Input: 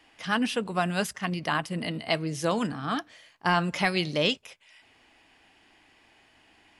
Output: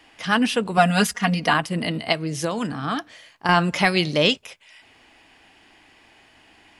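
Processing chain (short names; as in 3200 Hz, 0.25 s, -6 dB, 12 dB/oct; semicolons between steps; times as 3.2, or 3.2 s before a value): 0.77–1.54 comb 4.2 ms, depth 94%; 2.12–3.49 compressor 5:1, threshold -28 dBFS, peak gain reduction 7.5 dB; gain +6.5 dB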